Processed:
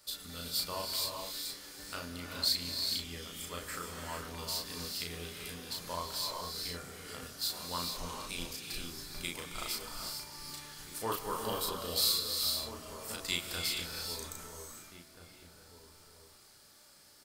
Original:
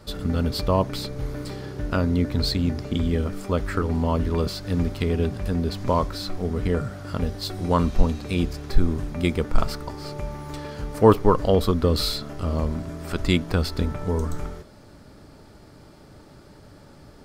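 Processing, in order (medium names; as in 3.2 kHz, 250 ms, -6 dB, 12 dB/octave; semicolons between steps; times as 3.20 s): pre-emphasis filter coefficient 0.97; doubling 35 ms -3 dB; echo from a far wall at 280 m, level -11 dB; gated-style reverb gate 480 ms rising, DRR 2 dB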